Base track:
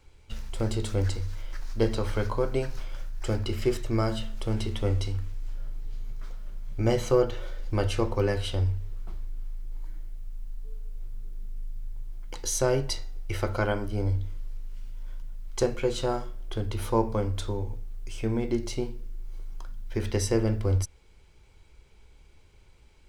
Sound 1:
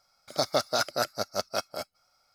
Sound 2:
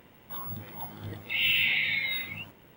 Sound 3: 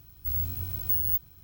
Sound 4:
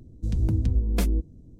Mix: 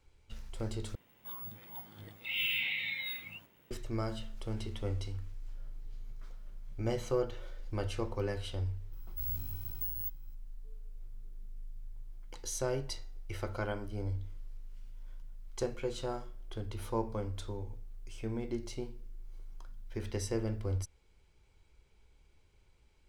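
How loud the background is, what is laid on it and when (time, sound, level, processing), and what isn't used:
base track −9.5 dB
0:00.95: overwrite with 2 −11.5 dB + high-shelf EQ 2,200 Hz +6 dB
0:08.92: mix in 3 −11 dB + speech leveller
not used: 1, 4

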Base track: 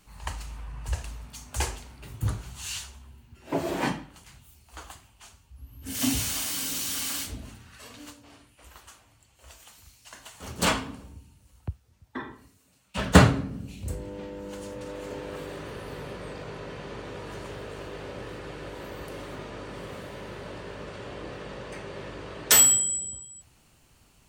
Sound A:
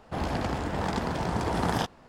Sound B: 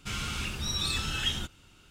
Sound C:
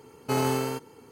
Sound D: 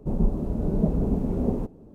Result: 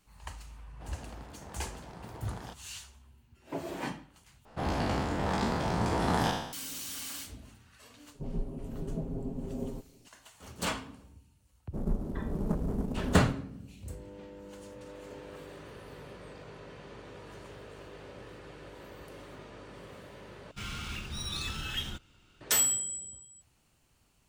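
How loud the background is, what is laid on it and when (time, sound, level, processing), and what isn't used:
base track −9 dB
0:00.68: mix in A −18 dB
0:04.45: overwrite with A −3.5 dB + peak hold with a decay on every bin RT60 0.81 s
0:08.14: mix in D −13.5 dB + comb filter 7.5 ms, depth 74%
0:11.67: mix in D −8.5 dB, fades 0.10 s + stylus tracing distortion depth 0.46 ms
0:20.51: overwrite with B −4.5 dB + linearly interpolated sample-rate reduction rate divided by 3×
not used: C

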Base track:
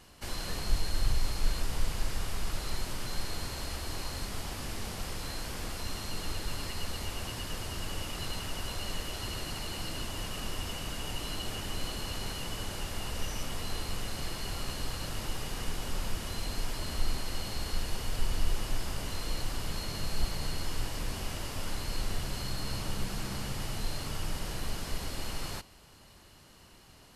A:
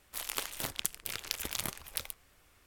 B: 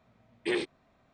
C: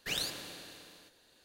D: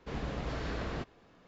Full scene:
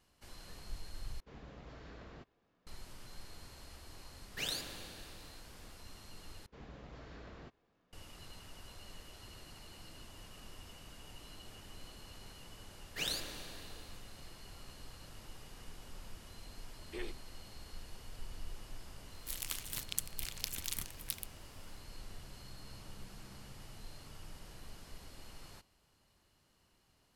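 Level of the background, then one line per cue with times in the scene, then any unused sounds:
base track −16 dB
0:01.20: overwrite with D −15.5 dB
0:04.31: mix in C −3.5 dB + log-companded quantiser 8 bits
0:06.46: overwrite with D −15 dB
0:12.90: mix in C −2.5 dB, fades 0.10 s
0:16.47: mix in B −15 dB
0:19.13: mix in A −2.5 dB + parametric band 600 Hz −15 dB 2.7 octaves

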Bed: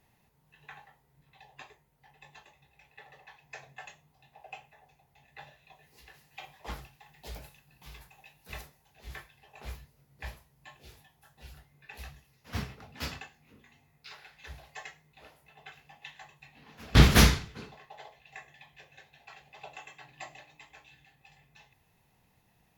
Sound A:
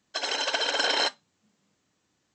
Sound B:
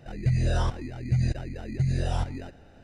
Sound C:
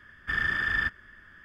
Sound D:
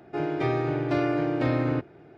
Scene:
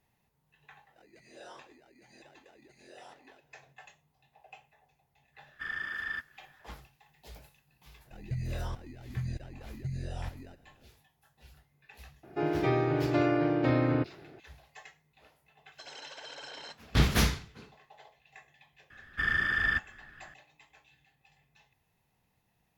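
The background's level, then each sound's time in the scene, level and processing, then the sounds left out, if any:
bed −6.5 dB
0:00.90: mix in B −16.5 dB + high-pass filter 320 Hz 24 dB per octave
0:05.32: mix in C −9 dB, fades 0.10 s + low-shelf EQ 210 Hz −12 dB
0:08.05: mix in B −11 dB
0:12.23: mix in D −1.5 dB + gate on every frequency bin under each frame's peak −55 dB strong
0:15.64: mix in A −14 dB + brickwall limiter −22 dBFS
0:18.90: mix in C −1 dB + notch filter 950 Hz, Q 11

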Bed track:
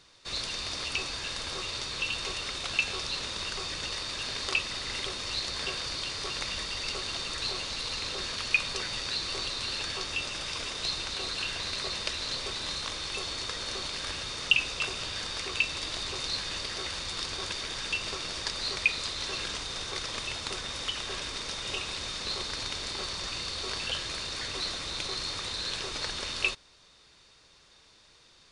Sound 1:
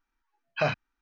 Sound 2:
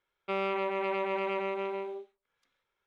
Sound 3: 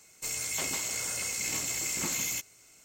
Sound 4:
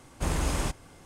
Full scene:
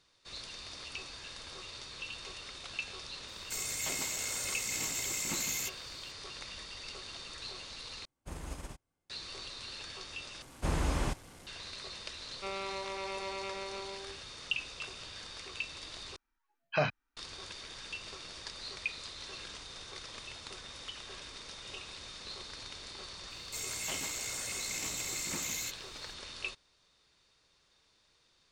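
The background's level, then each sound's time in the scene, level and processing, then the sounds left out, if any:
bed track −11 dB
0:03.28: mix in 3 −3.5 dB
0:08.05: overwrite with 4 −12 dB + expander for the loud parts 2.5 to 1, over −39 dBFS
0:10.42: overwrite with 4 −3 dB + linear delta modulator 64 kbit/s, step −45 dBFS
0:12.14: mix in 2 −6 dB + low-shelf EQ 420 Hz −8 dB
0:16.16: overwrite with 1 −3.5 dB
0:23.30: mix in 3 −5 dB + highs frequency-modulated by the lows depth 0.16 ms

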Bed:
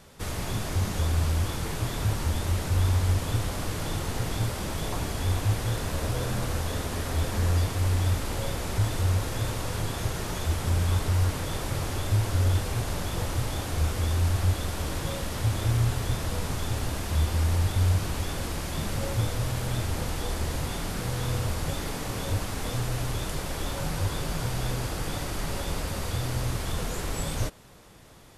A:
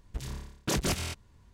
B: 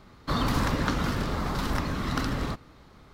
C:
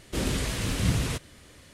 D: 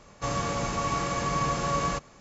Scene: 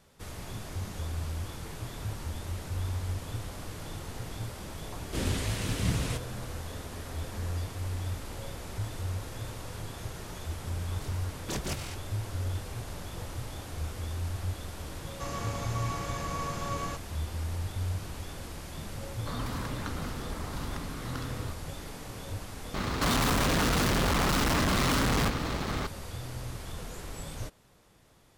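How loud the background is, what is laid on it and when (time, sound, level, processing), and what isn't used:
bed −9.5 dB
0:05.00: mix in C −4 dB
0:10.81: mix in A −6 dB
0:14.98: mix in D −8 dB
0:18.98: mix in B −10.5 dB
0:22.74: overwrite with B −12 dB + fuzz pedal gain 51 dB, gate −58 dBFS

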